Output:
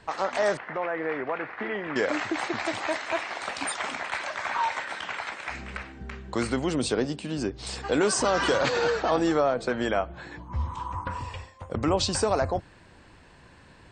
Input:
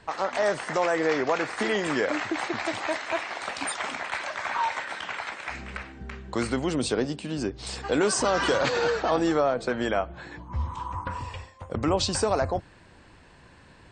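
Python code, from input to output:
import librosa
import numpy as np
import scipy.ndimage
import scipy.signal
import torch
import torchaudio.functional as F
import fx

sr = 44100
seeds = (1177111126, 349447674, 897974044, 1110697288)

y = fx.ladder_lowpass(x, sr, hz=2800.0, resonance_pct=25, at=(0.57, 1.96))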